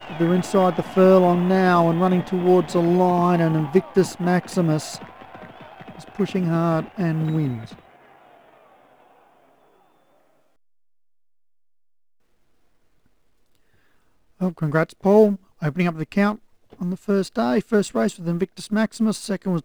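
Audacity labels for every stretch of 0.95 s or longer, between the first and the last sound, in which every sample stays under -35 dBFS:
7.790000	14.410000	silence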